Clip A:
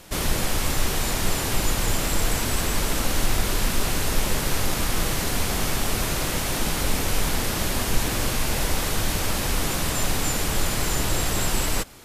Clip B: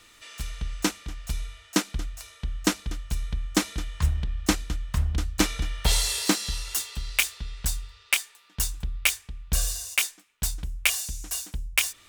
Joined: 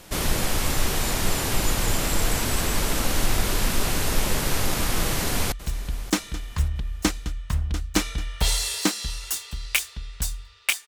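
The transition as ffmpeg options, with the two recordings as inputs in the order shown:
ffmpeg -i cue0.wav -i cue1.wav -filter_complex "[0:a]apad=whole_dur=10.87,atrim=end=10.87,atrim=end=5.522[link_01];[1:a]atrim=start=2.958:end=8.31[link_02];[link_01][link_02]acrossfade=duration=0.004:curve1=hsin:curve2=hsin,asplit=2[link_03][link_04];[link_04]afade=type=in:start_time=5.01:duration=0.01,afade=type=out:start_time=5.52:duration=0.01,aecho=0:1:580|1160|1740:0.149624|0.0598494|0.0239398[link_05];[link_03][link_05]amix=inputs=2:normalize=0" out.wav

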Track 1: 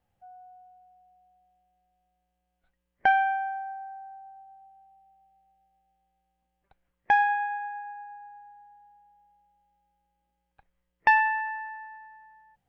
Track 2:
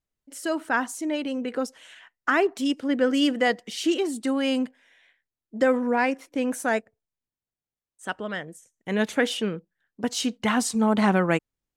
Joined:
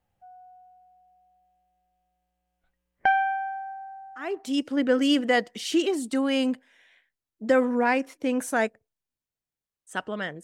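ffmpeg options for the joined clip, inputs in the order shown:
ffmpeg -i cue0.wav -i cue1.wav -filter_complex "[0:a]apad=whole_dur=10.43,atrim=end=10.43,atrim=end=4.63,asetpts=PTS-STARTPTS[link_01];[1:a]atrim=start=2.25:end=8.55,asetpts=PTS-STARTPTS[link_02];[link_01][link_02]acrossfade=duration=0.5:curve1=tri:curve2=tri" out.wav

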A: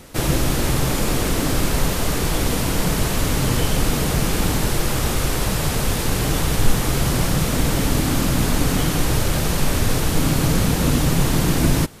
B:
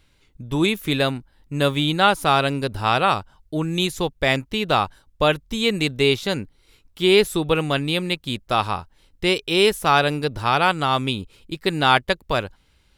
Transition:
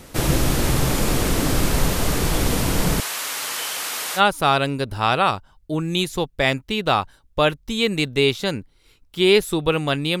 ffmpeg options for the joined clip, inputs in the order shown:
ffmpeg -i cue0.wav -i cue1.wav -filter_complex "[0:a]asettb=1/sr,asplit=3[link_01][link_02][link_03];[link_01]atrim=end=3.004[link_04];[link_02]atrim=start=3:end=4.21,asetpts=PTS-STARTPTS,afade=type=in:duration=0.004:curve=qsin,afade=type=out:start_time=1.206:duration=0.004:curve=qsin,highpass=1100[link_05];[link_03]atrim=start=4.206[link_06];[link_04][link_05]acrossfade=duration=0.004:curve1=hsin:curve2=qsin[link_07];[link_07][link_06]acrossfade=duration=0.004:curve1=qsin:curve2=hsin,apad=whole_dur=10.2,atrim=end=10.2,atrim=end=4.21,asetpts=PTS-STARTPTS[link_08];[1:a]atrim=start=1.98:end=8.03,asetpts=PTS-STARTPTS[link_09];[link_08][link_09]acrossfade=duration=0.06:curve1=tri:curve2=tri" out.wav

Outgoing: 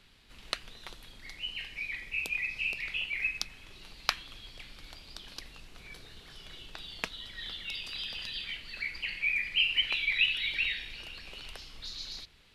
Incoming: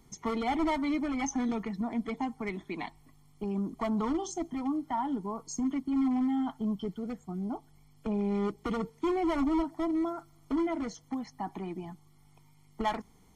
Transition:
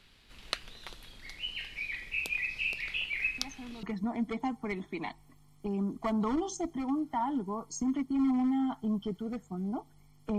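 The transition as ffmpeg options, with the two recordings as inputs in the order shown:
ffmpeg -i cue0.wav -i cue1.wav -filter_complex "[1:a]asplit=2[link_01][link_02];[0:a]apad=whole_dur=10.38,atrim=end=10.38,atrim=end=3.832[link_03];[link_02]atrim=start=1.598:end=8.15[link_04];[link_01]atrim=start=1.15:end=1.6,asetpts=PTS-STARTPTS,volume=-14.5dB,afade=type=in:duration=0.004:curve=hsin,afade=type=out:start_time=0.446:duration=0.004:curve=hsin,adelay=3380[link_05];[link_03][link_04]acrossfade=duration=0.004:curve1=hsin:curve2=hsin[link_06];[link_06][link_05]amix=inputs=2:normalize=0" out.wav

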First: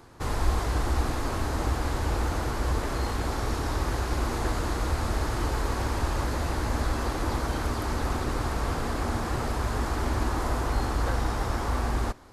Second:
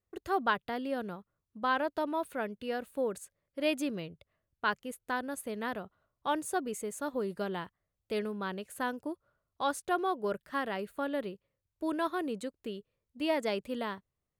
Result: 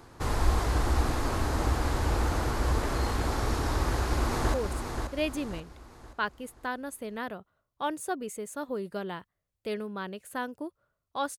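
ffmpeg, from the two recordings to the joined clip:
ffmpeg -i cue0.wav -i cue1.wav -filter_complex "[0:a]apad=whole_dur=11.38,atrim=end=11.38,atrim=end=4.542[link_01];[1:a]atrim=start=2.988:end=9.83[link_02];[link_01][link_02]acrossfade=duration=0.004:curve1=hsin:curve2=hsin,asplit=2[link_03][link_04];[link_04]afade=type=in:start_time=3.78:duration=0.01,afade=type=out:start_time=4.54:duration=0.01,aecho=0:1:530|1060|1590|2120|2650:0.501187|0.200475|0.08019|0.032076|0.0128304[link_05];[link_03][link_05]amix=inputs=2:normalize=0" out.wav

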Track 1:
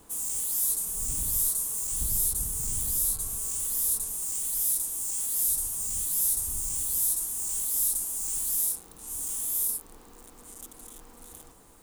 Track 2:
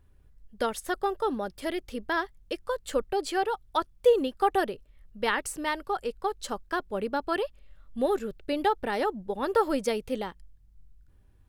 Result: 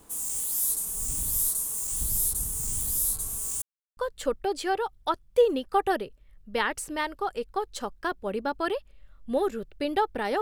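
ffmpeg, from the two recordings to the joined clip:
ffmpeg -i cue0.wav -i cue1.wav -filter_complex "[0:a]apad=whole_dur=10.41,atrim=end=10.41,asplit=2[link_01][link_02];[link_01]atrim=end=3.62,asetpts=PTS-STARTPTS,afade=type=out:start_time=3.616:duration=0.004:curve=hsin[link_03];[link_02]atrim=start=3.62:end=3.97,asetpts=PTS-STARTPTS,volume=0[link_04];[1:a]atrim=start=2.65:end=9.09,asetpts=PTS-STARTPTS,afade=type=in:duration=0.004:curve=hsin[link_05];[link_03][link_04][link_05]concat=n=3:v=0:a=1" out.wav

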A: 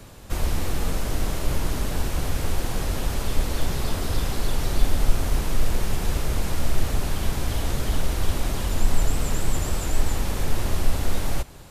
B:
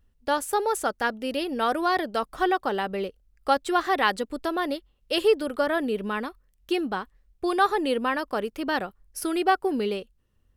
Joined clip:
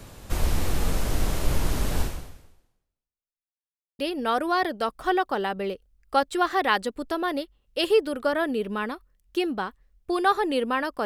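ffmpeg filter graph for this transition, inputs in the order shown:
ffmpeg -i cue0.wav -i cue1.wav -filter_complex "[0:a]apad=whole_dur=11.05,atrim=end=11.05,asplit=2[link_01][link_02];[link_01]atrim=end=3.5,asetpts=PTS-STARTPTS,afade=type=out:start_time=2.02:duration=1.48:curve=exp[link_03];[link_02]atrim=start=3.5:end=3.99,asetpts=PTS-STARTPTS,volume=0[link_04];[1:a]atrim=start=1.33:end=8.39,asetpts=PTS-STARTPTS,afade=type=in:duration=0.004:curve=hsin[link_05];[link_03][link_04][link_05]concat=n=3:v=0:a=1" out.wav

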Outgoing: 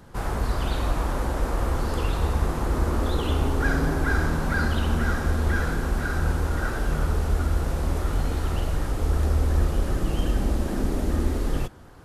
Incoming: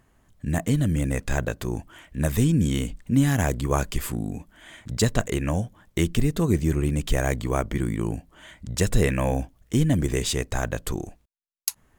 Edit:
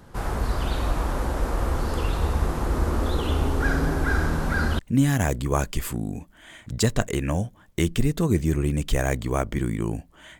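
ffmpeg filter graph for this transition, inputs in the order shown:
ffmpeg -i cue0.wav -i cue1.wav -filter_complex "[0:a]apad=whole_dur=10.39,atrim=end=10.39,atrim=end=4.792[link_01];[1:a]atrim=start=2.978:end=8.58[link_02];[link_01][link_02]acrossfade=duration=0.004:curve1=hsin:curve2=hsin" out.wav

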